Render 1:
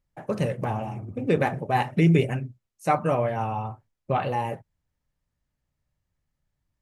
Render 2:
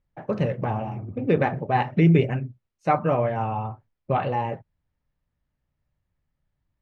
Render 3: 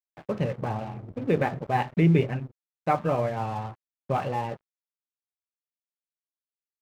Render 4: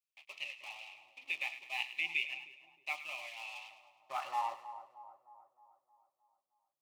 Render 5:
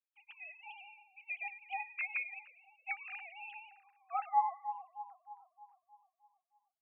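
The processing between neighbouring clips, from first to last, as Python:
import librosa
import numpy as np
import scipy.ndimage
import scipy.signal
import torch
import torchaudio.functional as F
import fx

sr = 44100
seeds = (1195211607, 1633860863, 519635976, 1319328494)

y1 = fx.air_absorb(x, sr, metres=200.0)
y1 = y1 * 10.0 ** (2.0 / 20.0)
y2 = np.sign(y1) * np.maximum(np.abs(y1) - 10.0 ** (-41.0 / 20.0), 0.0)
y2 = y2 * 10.0 ** (-2.5 / 20.0)
y3 = fx.filter_sweep_highpass(y2, sr, from_hz=2500.0, to_hz=150.0, start_s=3.65, end_s=6.61, q=5.2)
y3 = fx.fixed_phaser(y3, sr, hz=310.0, stages=8)
y3 = fx.echo_split(y3, sr, split_hz=1100.0, low_ms=311, high_ms=104, feedback_pct=52, wet_db=-12)
y3 = y3 * 10.0 ** (-2.0 / 20.0)
y4 = fx.sine_speech(y3, sr)
y4 = y4 * 10.0 ** (1.0 / 20.0)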